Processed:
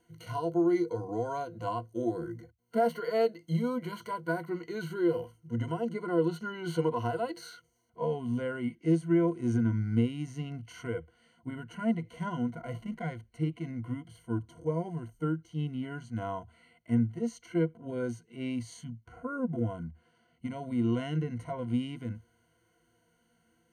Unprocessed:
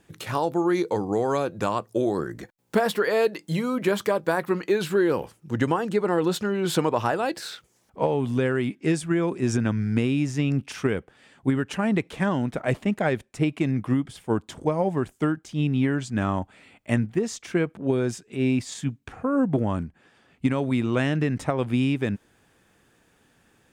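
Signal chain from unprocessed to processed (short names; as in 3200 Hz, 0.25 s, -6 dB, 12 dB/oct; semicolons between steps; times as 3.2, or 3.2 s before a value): ripple EQ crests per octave 1.9, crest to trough 17 dB; harmonic-percussive split percussive -15 dB; gain -9 dB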